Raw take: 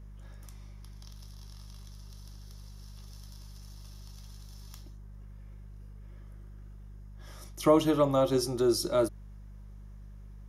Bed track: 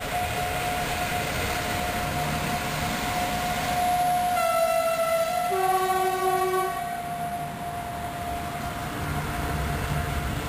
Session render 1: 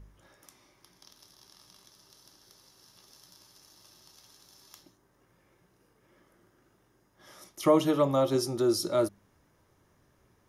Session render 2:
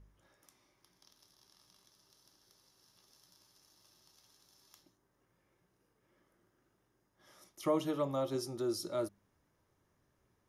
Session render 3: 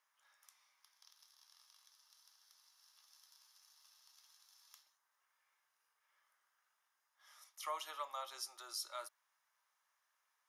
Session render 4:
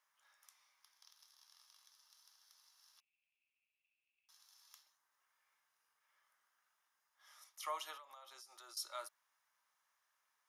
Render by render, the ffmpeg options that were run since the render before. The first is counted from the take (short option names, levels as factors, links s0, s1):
-af "bandreject=f=50:t=h:w=4,bandreject=f=100:t=h:w=4,bandreject=f=150:t=h:w=4,bandreject=f=200:t=h:w=4"
-af "volume=0.335"
-af "highpass=f=940:w=0.5412,highpass=f=940:w=1.3066"
-filter_complex "[0:a]asettb=1/sr,asplit=3[s0][s1][s2];[s0]atrim=end=3.004[s3];[s1]atrim=start=3:end=4.29,asetpts=PTS-STARTPTS,afade=t=in:d=0.004:c=qsin,afade=t=out:st=1.286:d=0.004:c=qsin,asuperpass=centerf=2500:order=4:qfactor=6.6[s4];[s2]atrim=start=4.286[s5];[s3][s4]acrossfade=d=0.004:c1=hsin:c2=qsin[s6];[s6][s5]acrossfade=d=0.004:c1=qsin:c2=hsin,asettb=1/sr,asplit=3[s7][s8][s9];[s7]atrim=end=7.974[s10];[s8]atrim=start=7.97:end=8.77,asetpts=PTS-STARTPTS,afade=t=in:d=0.004:c=qsin,afade=t=out:st=0.796:d=0.004:c=qsin,acompressor=threshold=0.00224:ratio=20:attack=3.2:release=140:knee=1:detection=peak[s11];[s9]atrim=start=8.766[s12];[s10][s11]acrossfade=d=0.004:c1=hsin:c2=qsin[s13];[s13][s12]acrossfade=d=0.004:c1=qsin:c2=hsin"